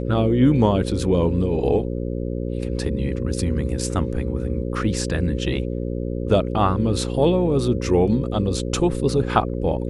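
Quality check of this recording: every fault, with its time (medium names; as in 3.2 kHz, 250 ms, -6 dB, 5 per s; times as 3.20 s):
buzz 60 Hz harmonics 9 -26 dBFS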